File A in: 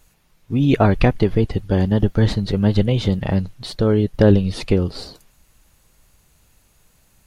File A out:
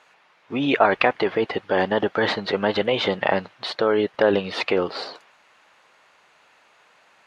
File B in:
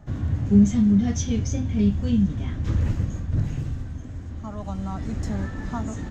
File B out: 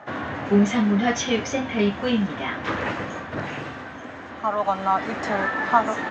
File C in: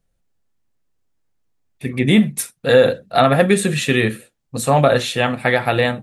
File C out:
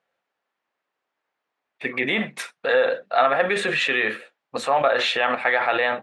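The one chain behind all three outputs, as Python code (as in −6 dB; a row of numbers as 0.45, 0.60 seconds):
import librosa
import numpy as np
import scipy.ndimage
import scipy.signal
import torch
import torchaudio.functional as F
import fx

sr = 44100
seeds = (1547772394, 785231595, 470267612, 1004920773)

p1 = fx.bandpass_edges(x, sr, low_hz=710.0, high_hz=2400.0)
p2 = fx.over_compress(p1, sr, threshold_db=-31.0, ratio=-1.0)
p3 = p1 + (p2 * 10.0 ** (1.0 / 20.0))
y = p3 * 10.0 ** (-24 / 20.0) / np.sqrt(np.mean(np.square(p3)))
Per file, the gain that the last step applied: +3.5, +12.5, −1.5 decibels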